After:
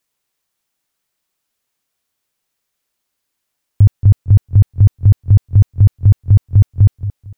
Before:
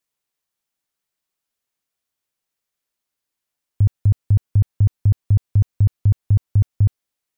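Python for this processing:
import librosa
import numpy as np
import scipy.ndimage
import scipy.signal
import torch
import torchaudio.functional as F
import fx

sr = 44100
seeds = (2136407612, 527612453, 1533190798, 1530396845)

y = fx.echo_feedback(x, sr, ms=227, feedback_pct=26, wet_db=-13.0)
y = y * librosa.db_to_amplitude(7.5)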